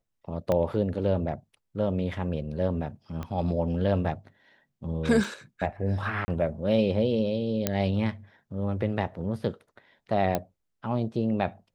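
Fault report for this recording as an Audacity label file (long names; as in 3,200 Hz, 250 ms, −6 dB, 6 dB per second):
0.520000	0.520000	click −14 dBFS
3.230000	3.230000	click −22 dBFS
5.240000	5.240000	drop-out 2.3 ms
6.250000	6.280000	drop-out 30 ms
7.670000	7.670000	click −8 dBFS
10.350000	10.350000	click −12 dBFS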